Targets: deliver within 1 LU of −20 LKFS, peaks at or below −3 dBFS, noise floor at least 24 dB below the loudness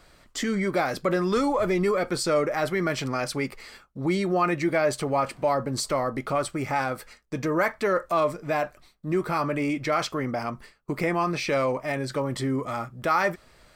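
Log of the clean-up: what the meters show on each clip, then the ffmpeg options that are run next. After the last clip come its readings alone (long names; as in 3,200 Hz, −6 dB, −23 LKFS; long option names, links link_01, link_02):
integrated loudness −26.5 LKFS; sample peak −12.0 dBFS; target loudness −20.0 LKFS
→ -af "volume=6.5dB"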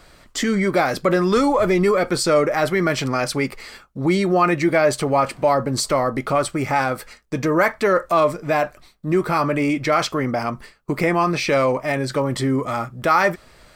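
integrated loudness −20.0 LKFS; sample peak −5.5 dBFS; background noise floor −51 dBFS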